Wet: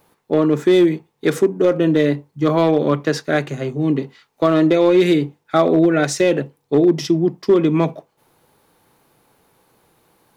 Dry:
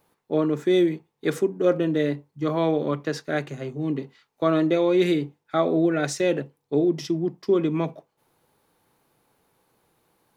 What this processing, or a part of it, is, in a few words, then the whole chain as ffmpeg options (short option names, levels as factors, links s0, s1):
limiter into clipper: -af "alimiter=limit=0.211:level=0:latency=1:release=172,asoftclip=type=hard:threshold=0.168,volume=2.66"